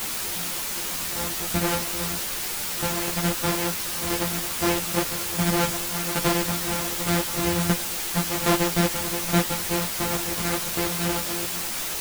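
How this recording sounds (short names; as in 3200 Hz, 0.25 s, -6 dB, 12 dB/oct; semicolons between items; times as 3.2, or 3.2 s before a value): a buzz of ramps at a fixed pitch in blocks of 256 samples; tremolo saw down 1.3 Hz, depth 75%; a quantiser's noise floor 6-bit, dither triangular; a shimmering, thickened sound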